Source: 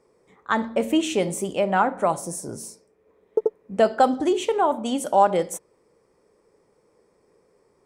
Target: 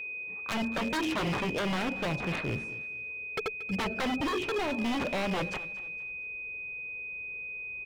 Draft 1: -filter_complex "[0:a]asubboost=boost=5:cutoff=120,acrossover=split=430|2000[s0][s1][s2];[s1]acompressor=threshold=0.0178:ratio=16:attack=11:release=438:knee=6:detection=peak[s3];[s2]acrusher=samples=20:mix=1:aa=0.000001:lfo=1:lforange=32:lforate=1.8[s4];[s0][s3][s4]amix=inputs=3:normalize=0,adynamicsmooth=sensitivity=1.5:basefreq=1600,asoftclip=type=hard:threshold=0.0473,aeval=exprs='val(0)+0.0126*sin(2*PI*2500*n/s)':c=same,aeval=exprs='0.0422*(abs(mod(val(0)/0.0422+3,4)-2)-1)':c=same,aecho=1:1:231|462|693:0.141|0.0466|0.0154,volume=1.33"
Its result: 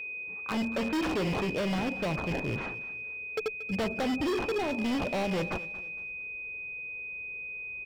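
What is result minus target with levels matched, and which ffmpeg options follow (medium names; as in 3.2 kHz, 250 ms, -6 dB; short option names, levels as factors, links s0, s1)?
hard clipper: distortion +22 dB; decimation with a swept rate: distortion +17 dB
-filter_complex "[0:a]asubboost=boost=5:cutoff=120,acrossover=split=430|2000[s0][s1][s2];[s1]acompressor=threshold=0.0178:ratio=16:attack=11:release=438:knee=6:detection=peak[s3];[s2]acrusher=samples=4:mix=1:aa=0.000001:lfo=1:lforange=6.4:lforate=1.8[s4];[s0][s3][s4]amix=inputs=3:normalize=0,adynamicsmooth=sensitivity=1.5:basefreq=1600,asoftclip=type=hard:threshold=0.141,aeval=exprs='val(0)+0.0126*sin(2*PI*2500*n/s)':c=same,aeval=exprs='0.0422*(abs(mod(val(0)/0.0422+3,4)-2)-1)':c=same,aecho=1:1:231|462|693:0.141|0.0466|0.0154,volume=1.33"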